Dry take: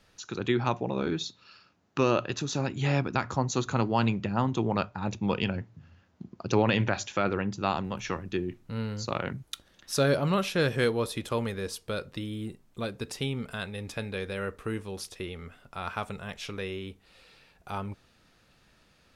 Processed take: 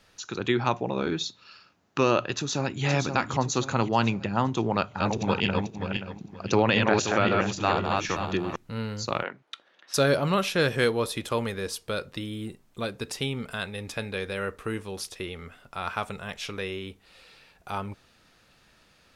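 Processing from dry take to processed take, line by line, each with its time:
0:02.34–0:02.84: delay throw 520 ms, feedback 45%, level −5.5 dB
0:04.65–0:08.56: feedback delay that plays each chunk backwards 264 ms, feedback 46%, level −2.5 dB
0:09.23–0:09.94: band-pass filter 420–2,800 Hz
whole clip: low-shelf EQ 390 Hz −4.5 dB; level +4 dB

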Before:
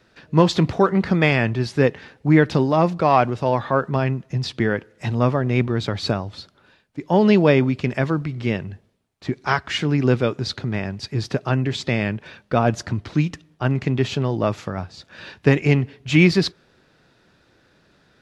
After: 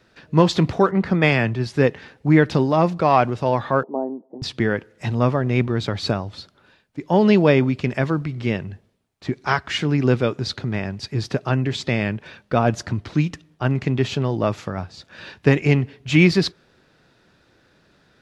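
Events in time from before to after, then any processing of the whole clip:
0:00.91–0:01.74: multiband upward and downward expander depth 40%
0:03.83–0:04.42: elliptic band-pass filter 260–860 Hz, stop band 50 dB

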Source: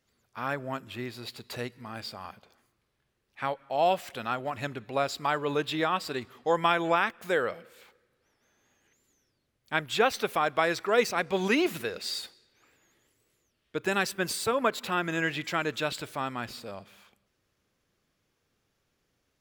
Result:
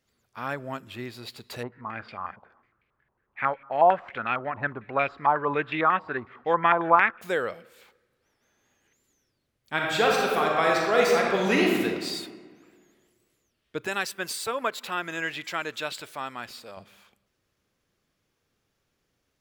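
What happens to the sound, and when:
0:01.63–0:07.21: low-pass on a step sequencer 11 Hz 950–2,400 Hz
0:09.73–0:11.81: thrown reverb, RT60 1.7 s, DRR −2 dB
0:13.87–0:16.77: low-shelf EQ 340 Hz −11 dB

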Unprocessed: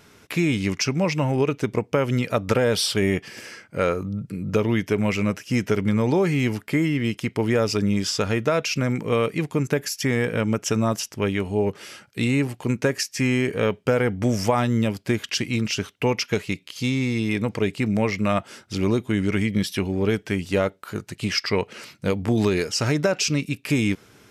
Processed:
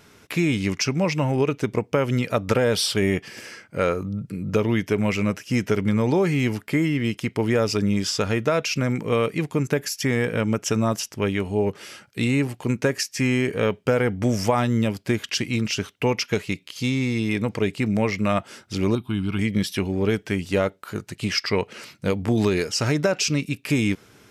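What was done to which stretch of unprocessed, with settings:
0:18.95–0:19.39: phaser with its sweep stopped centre 1,900 Hz, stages 6

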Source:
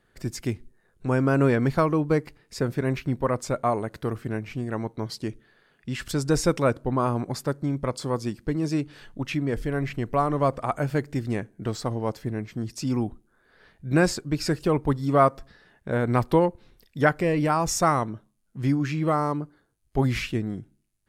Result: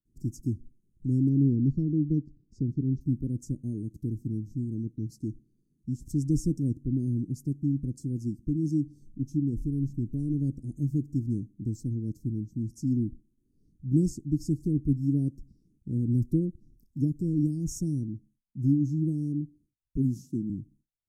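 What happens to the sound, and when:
0:01.29–0:03.01: high-frequency loss of the air 160 metres
0:19.97–0:20.50: high-pass filter 140 Hz 24 dB per octave
whole clip: high-shelf EQ 2,300 Hz −11.5 dB; noise gate with hold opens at −57 dBFS; Chebyshev band-stop filter 310–6,000 Hz, order 4

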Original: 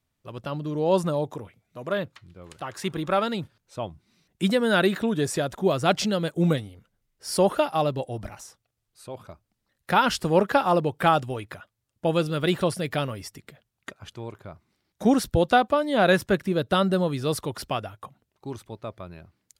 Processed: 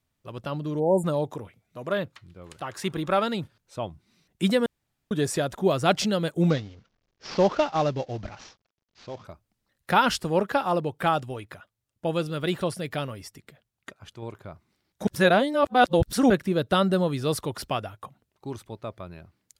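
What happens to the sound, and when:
0:00.80–0:01.04: time-frequency box erased 950–7,000 Hz
0:04.66–0:05.11: fill with room tone
0:06.50–0:09.25: variable-slope delta modulation 32 kbit/s
0:10.18–0:14.22: clip gain −3.5 dB
0:15.07–0:16.30: reverse

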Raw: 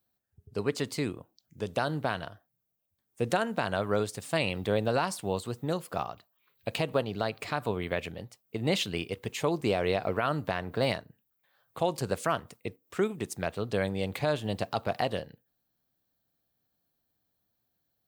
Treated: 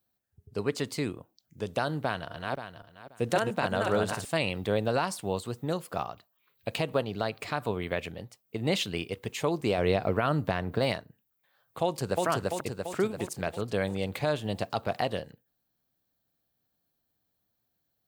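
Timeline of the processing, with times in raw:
0:02.03–0:04.25: feedback delay that plays each chunk backwards 265 ms, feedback 41%, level −2.5 dB
0:09.78–0:10.79: low-shelf EQ 370 Hz +6 dB
0:11.83–0:12.26: delay throw 340 ms, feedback 60%, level −1 dB

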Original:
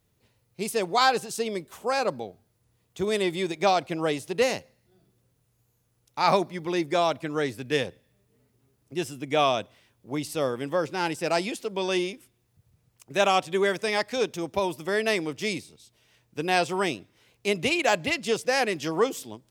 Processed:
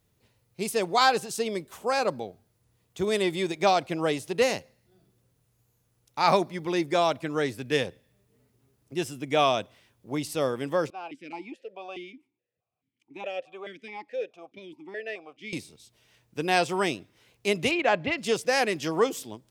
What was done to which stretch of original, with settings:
0:10.90–0:15.53: formant filter that steps through the vowels 4.7 Hz
0:17.71–0:18.18: low-pass filter 2,700 Hz

